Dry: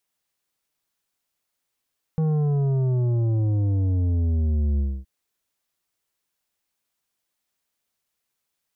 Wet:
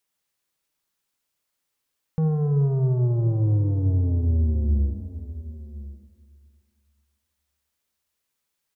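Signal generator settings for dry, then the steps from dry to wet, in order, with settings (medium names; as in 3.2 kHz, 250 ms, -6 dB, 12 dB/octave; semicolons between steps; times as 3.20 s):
sub drop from 160 Hz, over 2.87 s, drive 9 dB, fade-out 0.26 s, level -20 dB
band-stop 710 Hz, Q 12; delay 1048 ms -16 dB; Schroeder reverb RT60 2.3 s, DRR 9 dB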